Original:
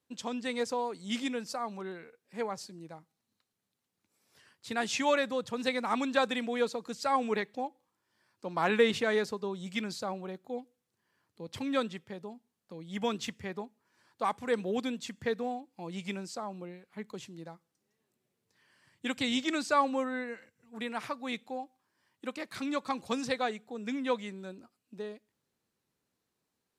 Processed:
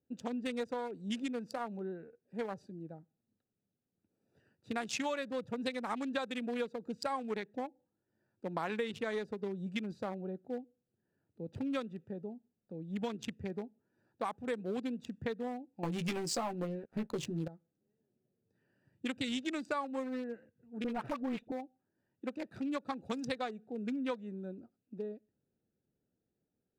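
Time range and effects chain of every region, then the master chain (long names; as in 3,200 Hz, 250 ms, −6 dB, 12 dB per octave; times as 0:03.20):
0:15.83–0:17.48: leveller curve on the samples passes 3 + double-tracking delay 13 ms −4 dB
0:20.84–0:21.52: high-shelf EQ 2,100 Hz −9 dB + leveller curve on the samples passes 2 + all-pass dispersion highs, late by 49 ms, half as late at 1,100 Hz
whole clip: adaptive Wiener filter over 41 samples; downward compressor 6 to 1, threshold −36 dBFS; high-shelf EQ 9,200 Hz +4.5 dB; level +2.5 dB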